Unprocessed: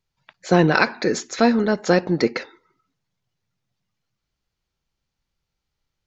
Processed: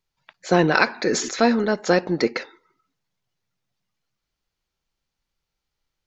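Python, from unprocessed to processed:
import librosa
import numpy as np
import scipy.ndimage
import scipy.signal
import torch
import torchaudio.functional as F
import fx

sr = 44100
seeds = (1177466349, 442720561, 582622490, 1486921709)

y = fx.peak_eq(x, sr, hz=100.0, db=-6.0, octaves=2.4)
y = fx.sustainer(y, sr, db_per_s=56.0, at=(0.93, 1.65))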